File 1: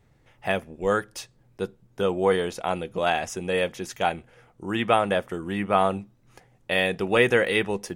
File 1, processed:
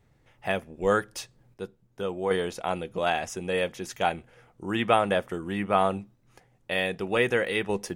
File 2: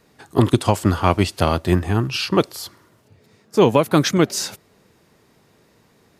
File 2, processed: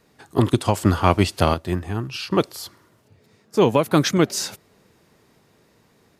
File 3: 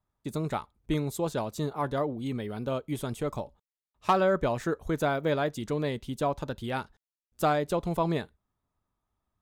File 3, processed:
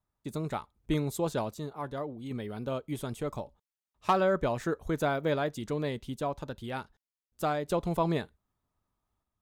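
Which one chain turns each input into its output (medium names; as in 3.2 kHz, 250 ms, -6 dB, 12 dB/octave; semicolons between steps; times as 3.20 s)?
random-step tremolo 1.3 Hz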